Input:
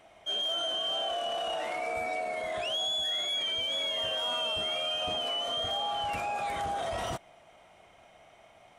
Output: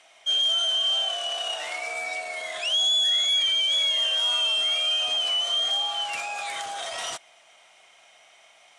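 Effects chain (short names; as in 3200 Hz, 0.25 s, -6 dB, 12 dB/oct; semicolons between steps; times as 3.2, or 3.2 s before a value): weighting filter ITU-R 468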